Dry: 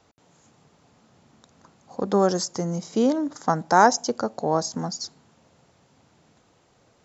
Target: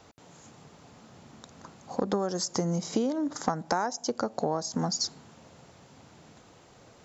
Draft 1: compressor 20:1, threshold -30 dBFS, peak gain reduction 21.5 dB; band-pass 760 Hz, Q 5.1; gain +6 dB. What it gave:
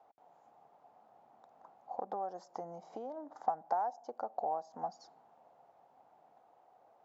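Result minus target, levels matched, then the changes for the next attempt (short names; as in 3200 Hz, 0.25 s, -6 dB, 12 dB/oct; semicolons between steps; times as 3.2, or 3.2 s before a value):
1000 Hz band +6.5 dB
remove: band-pass 760 Hz, Q 5.1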